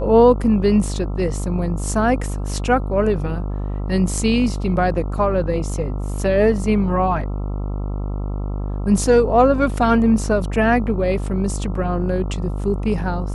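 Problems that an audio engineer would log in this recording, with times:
mains buzz 50 Hz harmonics 27 −24 dBFS

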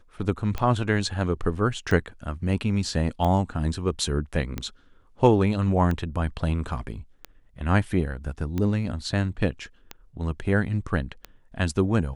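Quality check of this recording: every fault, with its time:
scratch tick 45 rpm −16 dBFS

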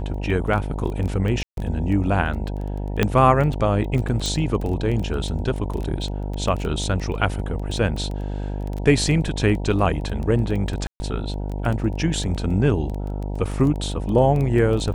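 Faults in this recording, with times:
mains buzz 50 Hz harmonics 19 −27 dBFS
surface crackle 11 per second −26 dBFS
0:01.43–0:01.57: drop-out 142 ms
0:03.03: click −5 dBFS
0:04.26: click
0:10.87–0:11.00: drop-out 130 ms

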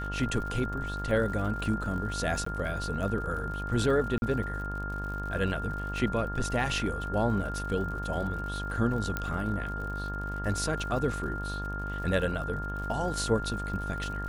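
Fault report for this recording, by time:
mains buzz 50 Hz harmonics 36 −36 dBFS
surface crackle 82 per second −39 dBFS
whistle 1,400 Hz −36 dBFS
0:02.45–0:02.46: drop-out 14 ms
0:04.18–0:04.22: drop-out 41 ms
0:09.17: click −16 dBFS

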